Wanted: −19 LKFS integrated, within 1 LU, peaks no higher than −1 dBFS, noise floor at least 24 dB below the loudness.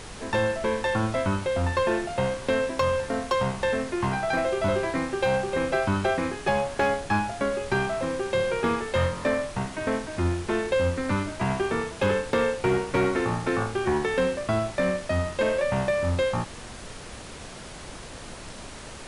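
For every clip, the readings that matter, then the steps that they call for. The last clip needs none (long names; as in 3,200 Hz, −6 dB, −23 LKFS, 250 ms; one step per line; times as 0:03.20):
share of clipped samples 0.3%; peaks flattened at −16.0 dBFS; background noise floor −41 dBFS; target noise floor −50 dBFS; integrated loudness −26.0 LKFS; sample peak −16.0 dBFS; target loudness −19.0 LKFS
→ clipped peaks rebuilt −16 dBFS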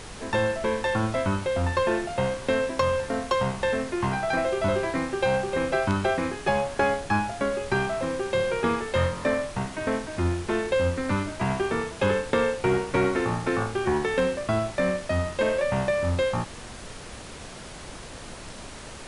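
share of clipped samples 0.0%; background noise floor −41 dBFS; target noise floor −50 dBFS
→ noise reduction from a noise print 9 dB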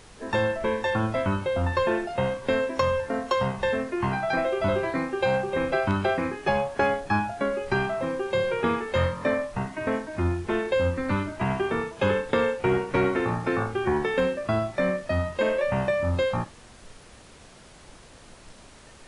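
background noise floor −50 dBFS; integrated loudness −26.0 LKFS; sample peak −10.5 dBFS; target loudness −19.0 LKFS
→ level +7 dB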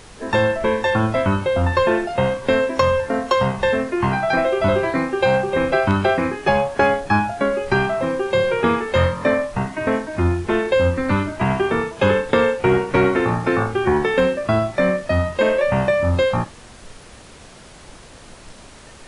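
integrated loudness −19.0 LKFS; sample peak −3.5 dBFS; background noise floor −43 dBFS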